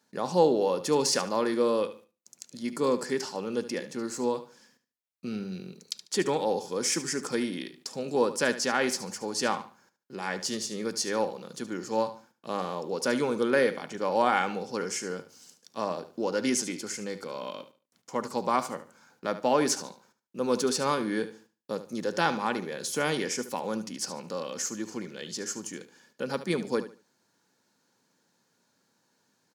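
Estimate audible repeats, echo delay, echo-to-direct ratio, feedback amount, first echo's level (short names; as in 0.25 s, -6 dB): 2, 73 ms, -12.5 dB, 25%, -13.0 dB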